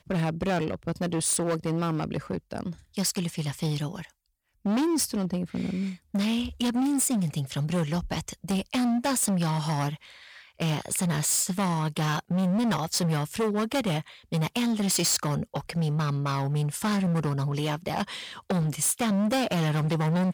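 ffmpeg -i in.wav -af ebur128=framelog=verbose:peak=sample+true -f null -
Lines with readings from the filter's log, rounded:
Integrated loudness:
  I:         -27.3 LUFS
  Threshold: -37.5 LUFS
Loudness range:
  LRA:         3.1 LU
  Threshold: -47.6 LUFS
  LRA low:   -29.4 LUFS
  LRA high:  -26.4 LUFS
Sample peak:
  Peak:      -18.3 dBFS
True peak:
  Peak:      -17.9 dBFS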